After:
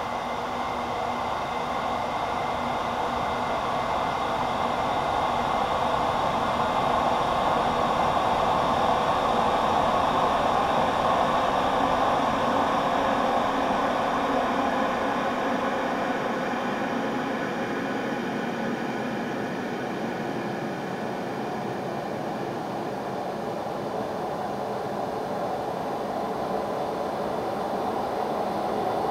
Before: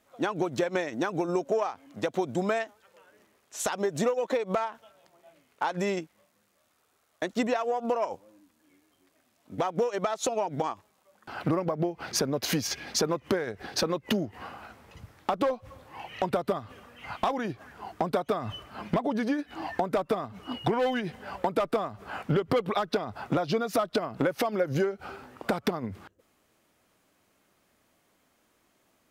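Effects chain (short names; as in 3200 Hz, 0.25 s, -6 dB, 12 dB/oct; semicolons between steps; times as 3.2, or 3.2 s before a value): spectral swells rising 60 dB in 2.06 s; diffused feedback echo 1.315 s, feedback 50%, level -15.5 dB; Paulstretch 34×, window 0.50 s, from 16.91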